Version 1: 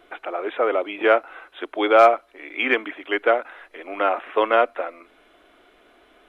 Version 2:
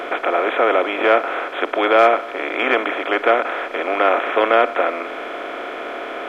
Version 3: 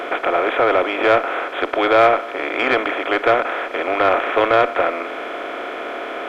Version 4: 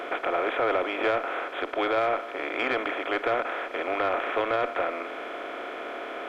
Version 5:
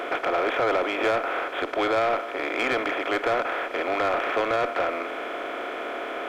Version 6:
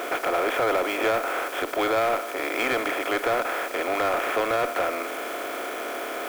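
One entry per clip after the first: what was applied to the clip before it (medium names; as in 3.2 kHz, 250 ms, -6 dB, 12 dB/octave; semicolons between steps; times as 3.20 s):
spectral levelling over time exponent 0.4; trim -2 dB
single-diode clipper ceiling -2 dBFS; trim +1 dB
peak limiter -8 dBFS, peak gain reduction 6.5 dB; trim -8 dB
waveshaping leveller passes 1
zero-crossing glitches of -30.5 dBFS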